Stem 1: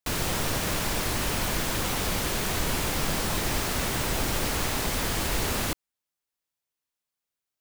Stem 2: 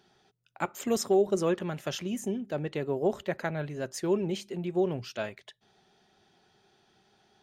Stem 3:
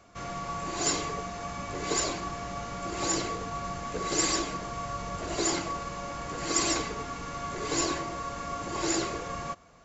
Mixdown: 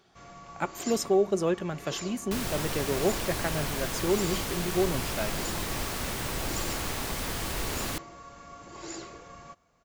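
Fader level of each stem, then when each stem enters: -5.0, +0.5, -11.5 dB; 2.25, 0.00, 0.00 s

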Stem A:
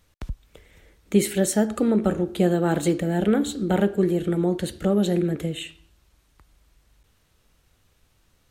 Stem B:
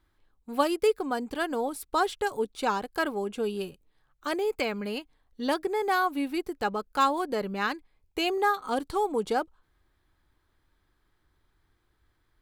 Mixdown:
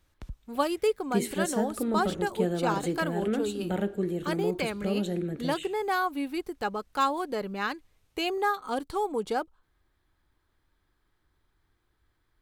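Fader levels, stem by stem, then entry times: -8.5, -2.0 dB; 0.00, 0.00 s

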